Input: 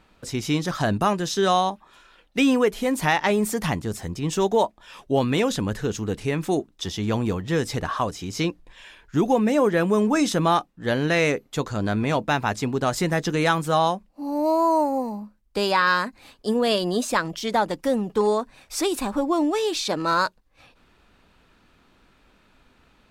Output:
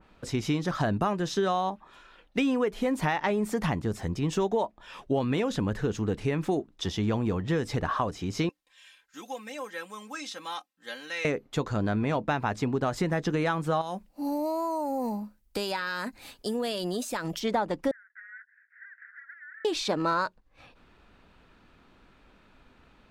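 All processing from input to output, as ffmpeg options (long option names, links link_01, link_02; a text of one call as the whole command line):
ffmpeg -i in.wav -filter_complex "[0:a]asettb=1/sr,asplit=3[link_01][link_02][link_03];[link_01]atrim=end=8.494[link_04];[link_02]atrim=start=8.49:end=11.25,asetpts=PTS-STARTPTS,afade=type=in:duration=0.004:curve=qsin,afade=type=out:start_time=2.756:duration=0.004:curve=qsin,aderivative,aecho=1:1:3.8:0.81,atrim=end_sample=121716,acrossover=split=5400[link_05][link_06];[link_06]acompressor=threshold=-46dB:ratio=4:attack=1:release=60[link_07];[link_05][link_07]amix=inputs=2:normalize=0[link_08];[link_03]atrim=start=11.246[link_09];[link_04][link_08]acrossfade=duration=0.004:curve1=hsin:curve2=qsin[link_10];[link_10][link_09]acrossfade=duration=0.004:curve1=qsin:curve2=hsin,asettb=1/sr,asplit=3[link_11][link_12][link_13];[link_11]atrim=end=13.814[link_14];[link_12]atrim=start=13.81:end=17.4,asetpts=PTS-STARTPTS,afade=type=in:duration=0.004:curve=qsin,afade=type=out:start_time=3.586:duration=0.004:curve=qsin,aemphasis=mode=production:type=75fm,bandreject=frequency=1100:width=9.4,acompressor=threshold=-25dB:ratio=12:attack=3.2:release=140:knee=1:detection=peak[link_15];[link_13]atrim=start=17.396[link_16];[link_14][link_15]acrossfade=duration=0.004:curve1=hsin:curve2=qsin[link_17];[link_17][link_16]acrossfade=duration=0.004:curve1=qsin:curve2=hsin,asettb=1/sr,asplit=3[link_18][link_19][link_20];[link_18]atrim=end=17.914[link_21];[link_19]atrim=start=17.91:end=19.65,asetpts=PTS-STARTPTS,afade=type=in:duration=0.004:curve=qsin,afade=type=out:start_time=1.736:duration=0.004:curve=qsin,acompressor=threshold=-24dB:ratio=3:attack=3.2:release=140:knee=1:detection=peak,aeval=exprs='0.0251*(abs(mod(val(0)/0.0251+3,4)-2)-1)':channel_layout=same,asuperpass=centerf=1700:order=8:qfactor=3.3[link_22];[link_20]atrim=start=19.646[link_23];[link_21][link_22]acrossfade=duration=0.004:curve1=hsin:curve2=qsin[link_24];[link_24][link_23]acrossfade=duration=0.004:curve1=qsin:curve2=hsin,aemphasis=mode=reproduction:type=cd,acompressor=threshold=-23dB:ratio=6,adynamicequalizer=threshold=0.00708:dfrequency=2300:dqfactor=0.7:tfrequency=2300:tqfactor=0.7:attack=5:release=100:ratio=0.375:range=1.5:mode=cutabove:tftype=highshelf" out.wav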